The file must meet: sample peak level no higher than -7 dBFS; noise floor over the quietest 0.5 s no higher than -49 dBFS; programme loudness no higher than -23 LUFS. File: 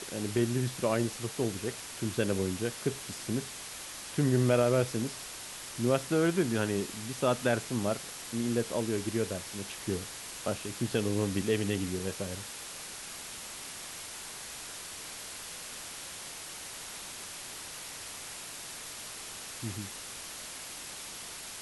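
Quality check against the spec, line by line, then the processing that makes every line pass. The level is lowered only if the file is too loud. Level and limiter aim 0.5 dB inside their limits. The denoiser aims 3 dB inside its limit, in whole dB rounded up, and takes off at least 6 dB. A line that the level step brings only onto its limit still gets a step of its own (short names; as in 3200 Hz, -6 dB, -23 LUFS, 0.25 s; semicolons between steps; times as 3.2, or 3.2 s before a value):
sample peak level -13.0 dBFS: OK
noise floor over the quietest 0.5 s -43 dBFS: fail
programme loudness -33.5 LUFS: OK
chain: denoiser 9 dB, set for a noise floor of -43 dBFS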